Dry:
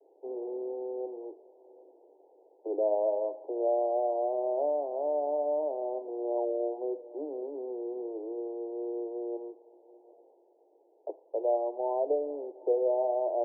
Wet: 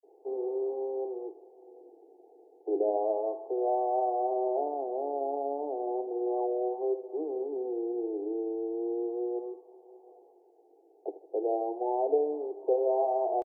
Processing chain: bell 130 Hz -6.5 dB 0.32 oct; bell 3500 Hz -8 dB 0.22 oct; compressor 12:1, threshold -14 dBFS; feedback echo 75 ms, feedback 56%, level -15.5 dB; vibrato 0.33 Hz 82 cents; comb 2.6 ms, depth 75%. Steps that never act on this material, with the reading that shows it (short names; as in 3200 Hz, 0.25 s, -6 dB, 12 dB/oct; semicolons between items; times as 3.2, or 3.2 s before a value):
bell 130 Hz: input band starts at 270 Hz; bell 3500 Hz: input band ends at 960 Hz; compressor, threshold -14 dBFS: input peak -17.0 dBFS